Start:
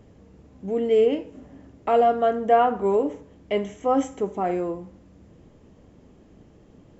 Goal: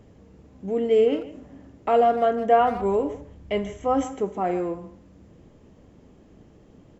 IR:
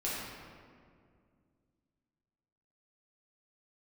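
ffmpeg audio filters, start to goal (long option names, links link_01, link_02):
-filter_complex "[0:a]asplit=3[link_01][link_02][link_03];[link_01]afade=type=out:start_time=2.59:duration=0.02[link_04];[link_02]asubboost=boost=4:cutoff=140,afade=type=in:start_time=2.59:duration=0.02,afade=type=out:start_time=4.03:duration=0.02[link_05];[link_03]afade=type=in:start_time=4.03:duration=0.02[link_06];[link_04][link_05][link_06]amix=inputs=3:normalize=0,asplit=2[link_07][link_08];[link_08]adelay=150,highpass=300,lowpass=3400,asoftclip=type=hard:threshold=-15.5dB,volume=-14dB[link_09];[link_07][link_09]amix=inputs=2:normalize=0"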